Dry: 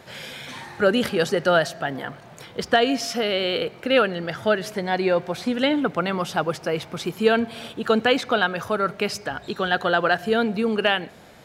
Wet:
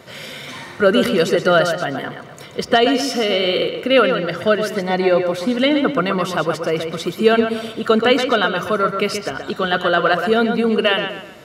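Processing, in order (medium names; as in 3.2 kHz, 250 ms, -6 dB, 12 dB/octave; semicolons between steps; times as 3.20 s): comb of notches 830 Hz; on a send: tape echo 126 ms, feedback 39%, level -6 dB, low-pass 5.1 kHz; on the sum: trim +5 dB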